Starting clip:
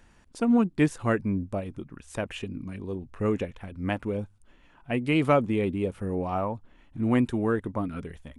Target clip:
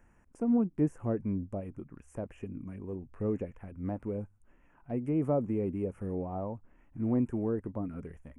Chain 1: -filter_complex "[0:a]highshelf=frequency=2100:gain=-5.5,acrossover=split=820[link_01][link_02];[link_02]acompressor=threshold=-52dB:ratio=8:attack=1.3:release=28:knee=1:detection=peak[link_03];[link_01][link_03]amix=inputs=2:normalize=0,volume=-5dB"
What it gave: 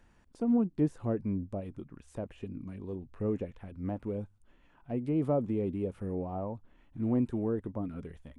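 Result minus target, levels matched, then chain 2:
4,000 Hz band +7.0 dB
-filter_complex "[0:a]asuperstop=centerf=4000:order=4:qfactor=1.1,highshelf=frequency=2100:gain=-5.5,acrossover=split=820[link_01][link_02];[link_02]acompressor=threshold=-52dB:ratio=8:attack=1.3:release=28:knee=1:detection=peak[link_03];[link_01][link_03]amix=inputs=2:normalize=0,volume=-5dB"

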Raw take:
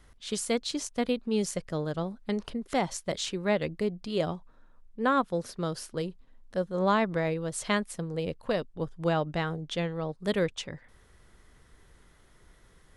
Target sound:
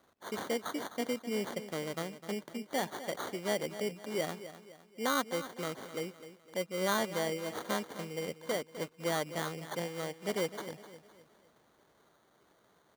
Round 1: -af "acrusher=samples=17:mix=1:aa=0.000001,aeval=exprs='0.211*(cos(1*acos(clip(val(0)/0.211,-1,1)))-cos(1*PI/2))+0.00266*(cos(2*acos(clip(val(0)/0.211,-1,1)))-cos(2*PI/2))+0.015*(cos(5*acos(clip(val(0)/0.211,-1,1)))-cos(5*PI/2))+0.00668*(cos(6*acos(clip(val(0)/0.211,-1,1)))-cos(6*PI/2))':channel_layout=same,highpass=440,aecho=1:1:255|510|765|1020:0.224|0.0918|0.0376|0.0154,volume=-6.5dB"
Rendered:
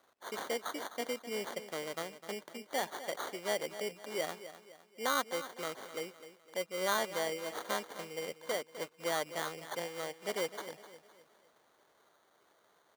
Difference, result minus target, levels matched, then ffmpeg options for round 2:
250 Hz band −6.0 dB
-af "acrusher=samples=17:mix=1:aa=0.000001,aeval=exprs='0.211*(cos(1*acos(clip(val(0)/0.211,-1,1)))-cos(1*PI/2))+0.00266*(cos(2*acos(clip(val(0)/0.211,-1,1)))-cos(2*PI/2))+0.015*(cos(5*acos(clip(val(0)/0.211,-1,1)))-cos(5*PI/2))+0.00668*(cos(6*acos(clip(val(0)/0.211,-1,1)))-cos(6*PI/2))':channel_layout=same,highpass=220,aecho=1:1:255|510|765|1020:0.224|0.0918|0.0376|0.0154,volume=-6.5dB"

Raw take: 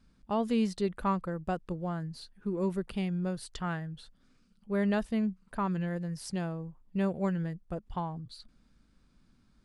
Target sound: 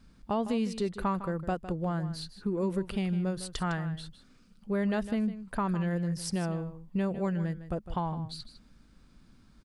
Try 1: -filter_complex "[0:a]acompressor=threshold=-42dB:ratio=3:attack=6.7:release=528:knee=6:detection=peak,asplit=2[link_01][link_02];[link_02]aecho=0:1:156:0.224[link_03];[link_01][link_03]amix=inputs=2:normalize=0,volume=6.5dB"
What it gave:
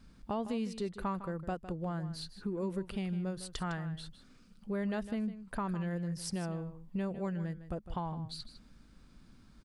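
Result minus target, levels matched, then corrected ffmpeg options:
downward compressor: peak gain reduction +5.5 dB
-filter_complex "[0:a]acompressor=threshold=-33.5dB:ratio=3:attack=6.7:release=528:knee=6:detection=peak,asplit=2[link_01][link_02];[link_02]aecho=0:1:156:0.224[link_03];[link_01][link_03]amix=inputs=2:normalize=0,volume=6.5dB"

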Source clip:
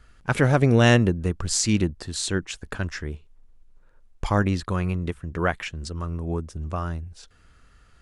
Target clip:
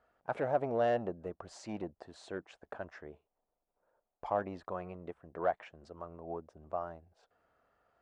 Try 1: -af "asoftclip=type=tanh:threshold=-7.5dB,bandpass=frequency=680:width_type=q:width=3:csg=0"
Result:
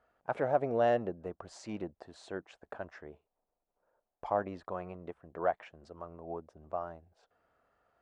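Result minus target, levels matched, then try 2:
soft clipping: distortion −7 dB
-af "asoftclip=type=tanh:threshold=-13.5dB,bandpass=frequency=680:width_type=q:width=3:csg=0"

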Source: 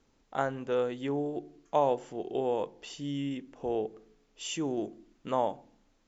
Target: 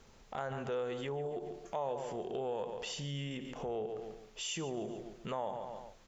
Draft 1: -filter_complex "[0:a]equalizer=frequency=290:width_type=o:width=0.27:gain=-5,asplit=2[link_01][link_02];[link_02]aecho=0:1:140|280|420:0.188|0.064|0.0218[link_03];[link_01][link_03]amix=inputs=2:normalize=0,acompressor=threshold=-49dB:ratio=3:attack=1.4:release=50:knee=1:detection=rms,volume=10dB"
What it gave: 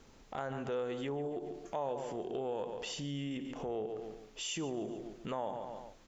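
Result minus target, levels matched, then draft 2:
250 Hz band +3.0 dB
-filter_complex "[0:a]equalizer=frequency=290:width_type=o:width=0.27:gain=-16.5,asplit=2[link_01][link_02];[link_02]aecho=0:1:140|280|420:0.188|0.064|0.0218[link_03];[link_01][link_03]amix=inputs=2:normalize=0,acompressor=threshold=-49dB:ratio=3:attack=1.4:release=50:knee=1:detection=rms,volume=10dB"

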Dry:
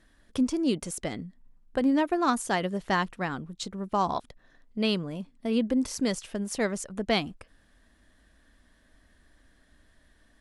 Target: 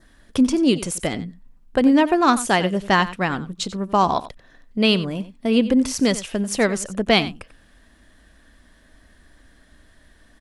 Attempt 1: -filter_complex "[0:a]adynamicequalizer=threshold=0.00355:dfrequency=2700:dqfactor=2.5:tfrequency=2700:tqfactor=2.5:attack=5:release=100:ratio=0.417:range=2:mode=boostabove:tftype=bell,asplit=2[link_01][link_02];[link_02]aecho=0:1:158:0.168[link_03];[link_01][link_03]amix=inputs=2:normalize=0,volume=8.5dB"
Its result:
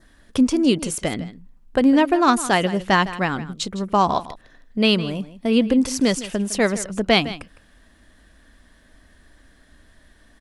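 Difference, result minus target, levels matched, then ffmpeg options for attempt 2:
echo 67 ms late
-filter_complex "[0:a]adynamicequalizer=threshold=0.00355:dfrequency=2700:dqfactor=2.5:tfrequency=2700:tqfactor=2.5:attack=5:release=100:ratio=0.417:range=2:mode=boostabove:tftype=bell,asplit=2[link_01][link_02];[link_02]aecho=0:1:91:0.168[link_03];[link_01][link_03]amix=inputs=2:normalize=0,volume=8.5dB"

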